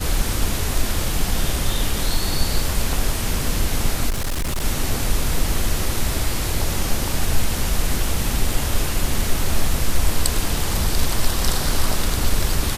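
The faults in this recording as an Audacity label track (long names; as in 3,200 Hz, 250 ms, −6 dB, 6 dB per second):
4.090000	4.630000	clipping −19 dBFS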